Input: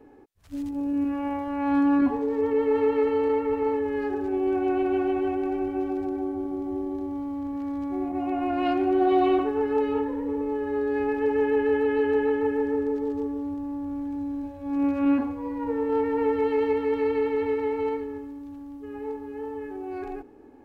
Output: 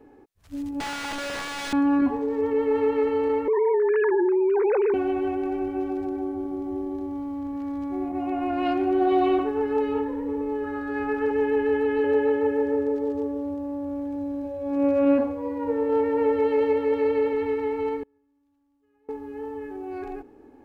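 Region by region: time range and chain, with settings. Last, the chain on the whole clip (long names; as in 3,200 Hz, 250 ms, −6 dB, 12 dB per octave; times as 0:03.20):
0:00.80–0:01.73: wrap-around overflow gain 26.5 dB + linearly interpolated sample-rate reduction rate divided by 3×
0:03.48–0:04.94: three sine waves on the formant tracks + envelope flattener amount 100%
0:10.64–0:11.31: parametric band 1,400 Hz +13.5 dB 0.3 octaves + mains-hum notches 60/120/180/240/300/360/420 Hz
0:12.04–0:17.33: high-pass filter 49 Hz + parametric band 550 Hz +14.5 dB 0.24 octaves
0:18.03–0:19.09: gate with flip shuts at −36 dBFS, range −31 dB + one half of a high-frequency compander encoder only
whole clip: no processing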